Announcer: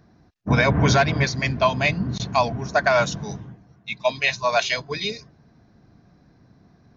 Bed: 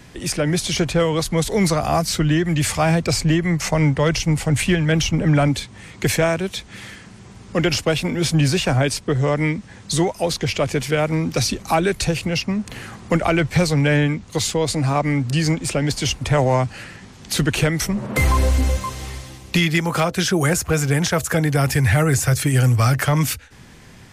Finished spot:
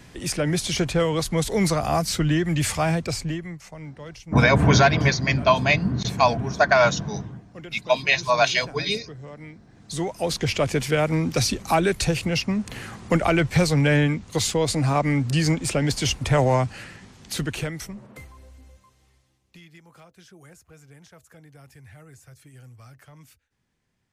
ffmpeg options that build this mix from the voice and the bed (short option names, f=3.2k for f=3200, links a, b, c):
-filter_complex "[0:a]adelay=3850,volume=1.5dB[a];[1:a]volume=16dB,afade=t=out:st=2.71:d=0.91:silence=0.125893,afade=t=in:st=9.73:d=0.7:silence=0.105925,afade=t=out:st=16.47:d=1.81:silence=0.0354813[b];[a][b]amix=inputs=2:normalize=0"